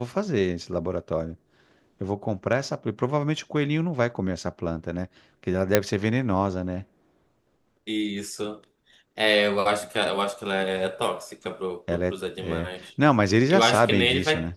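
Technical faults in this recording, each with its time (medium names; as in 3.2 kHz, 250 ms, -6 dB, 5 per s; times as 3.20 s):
5.75 s: pop -2 dBFS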